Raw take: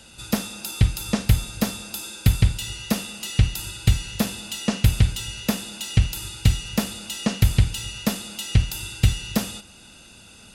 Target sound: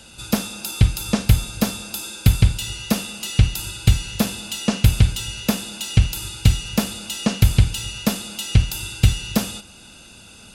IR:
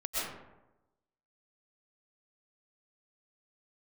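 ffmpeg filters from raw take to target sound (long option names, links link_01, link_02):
-af "bandreject=frequency=1900:width=14,volume=3dB"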